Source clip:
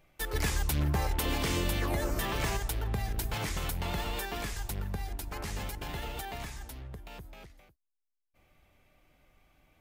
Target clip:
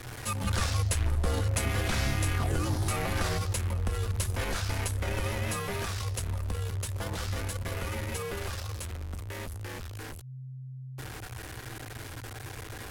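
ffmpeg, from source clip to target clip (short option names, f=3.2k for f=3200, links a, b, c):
-af "aeval=exprs='val(0)+0.5*0.0168*sgn(val(0))':c=same,asetrate=33516,aresample=44100,afreqshift=-130"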